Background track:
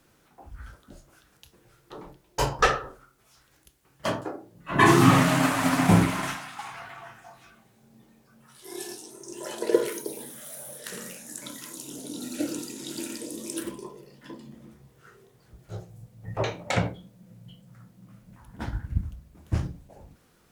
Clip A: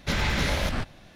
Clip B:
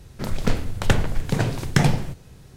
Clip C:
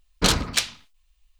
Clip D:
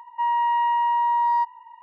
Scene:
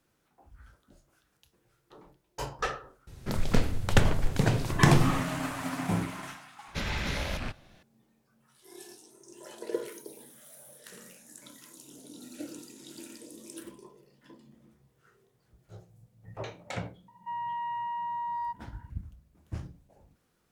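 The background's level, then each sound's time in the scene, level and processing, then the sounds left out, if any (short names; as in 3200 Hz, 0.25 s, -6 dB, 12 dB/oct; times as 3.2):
background track -11 dB
3.07 add B -3 dB
6.68 add A -7 dB + rattling part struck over -28 dBFS, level -23 dBFS
17.08 add D -13 dB
not used: C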